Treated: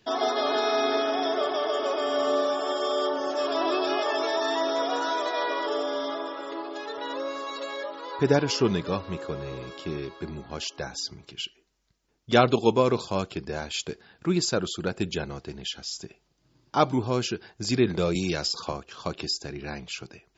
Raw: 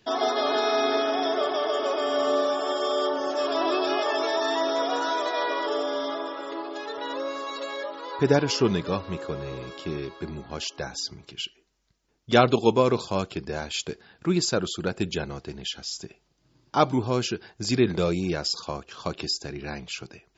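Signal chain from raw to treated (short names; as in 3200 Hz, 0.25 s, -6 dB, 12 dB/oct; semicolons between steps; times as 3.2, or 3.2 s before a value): 18.15–18.73 three-band squash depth 70%; gain -1 dB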